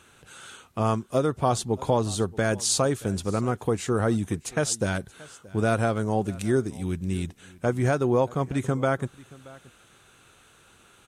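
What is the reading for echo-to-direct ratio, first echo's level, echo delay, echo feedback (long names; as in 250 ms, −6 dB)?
−22.0 dB, −22.0 dB, 627 ms, repeats not evenly spaced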